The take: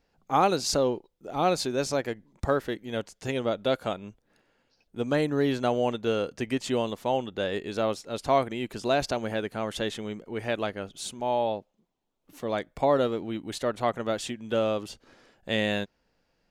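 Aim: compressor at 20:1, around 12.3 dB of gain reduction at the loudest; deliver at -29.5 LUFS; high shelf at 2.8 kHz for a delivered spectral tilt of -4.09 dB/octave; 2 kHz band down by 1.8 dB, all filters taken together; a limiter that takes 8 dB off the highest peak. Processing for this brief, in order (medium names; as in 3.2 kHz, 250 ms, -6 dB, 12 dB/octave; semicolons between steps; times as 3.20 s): peaking EQ 2 kHz -4.5 dB; treble shelf 2.8 kHz +5 dB; compression 20:1, threshold -30 dBFS; trim +8 dB; peak limiter -18 dBFS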